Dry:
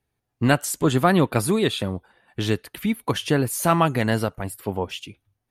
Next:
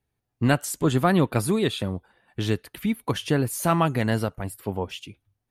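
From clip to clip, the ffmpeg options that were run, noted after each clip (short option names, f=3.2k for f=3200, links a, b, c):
-af "lowshelf=f=250:g=3.5,volume=-3.5dB"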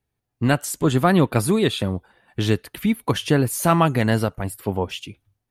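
-af "dynaudnorm=f=310:g=3:m=5dB"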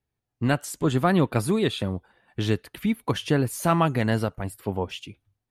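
-af "highshelf=f=8.6k:g=-6,volume=-4dB"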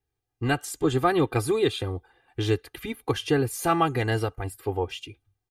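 -af "aecho=1:1:2.5:0.87,volume=-2.5dB"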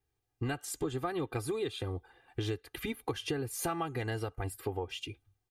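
-af "acompressor=threshold=-32dB:ratio=6"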